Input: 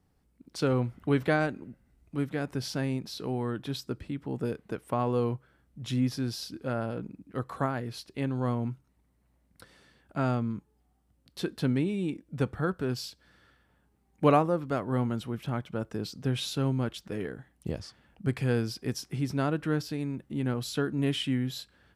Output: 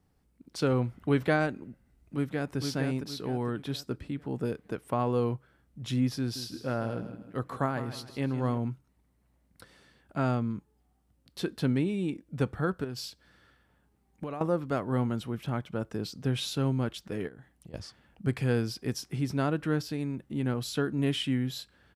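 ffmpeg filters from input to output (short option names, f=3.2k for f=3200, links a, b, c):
-filter_complex "[0:a]asplit=2[a][b];[b]afade=t=in:st=1.65:d=0.01,afade=t=out:st=2.57:d=0.01,aecho=0:1:460|920|1380|1840|2300:0.562341|0.224937|0.0899746|0.0359898|0.0143959[c];[a][c]amix=inputs=2:normalize=0,asettb=1/sr,asplit=3[d][e][f];[d]atrim=end=6.204[g];[e]atrim=start=6.2:end=8.58,asetpts=PTS-STARTPTS,afade=t=in:d=0.004:c=qsin,afade=t=out:st=2.376:d=0.004:c=qsin,aecho=1:1:156|312|468|624:0.251|0.0904|0.0326|0.0117,atrim=end_sample=104958[h];[f]atrim=start=8.576[i];[g][h]acrossfade=d=0.004:c1=hsin:c2=qsin[j];[j][i]acrossfade=d=0.004:c1=qsin:c2=hsin,asettb=1/sr,asplit=3[k][l][m];[k]atrim=end=12.844[n];[l]atrim=start=12.84:end=14.41,asetpts=PTS-STARTPTS,afade=t=in:d=0.004:c=qsin,afade=t=out:st=1.566:d=0.004:c=qsin,acompressor=threshold=-33dB:ratio=10:attack=3.2:release=140:knee=1:detection=peak[o];[m]atrim=start=14.406[p];[n][o]acrossfade=d=0.004:c1=hsin:c2=qsin[q];[q][p]acrossfade=d=0.004:c1=qsin:c2=hsin,asplit=3[r][s][t];[r]afade=t=out:st=17.27:d=0.02[u];[s]acompressor=threshold=-44dB:ratio=16:attack=3.2:release=140:knee=1:detection=peak,afade=t=in:st=17.27:d=0.02,afade=t=out:st=17.73:d=0.02[v];[t]afade=t=in:st=17.73:d=0.02[w];[u][v][w]amix=inputs=3:normalize=0"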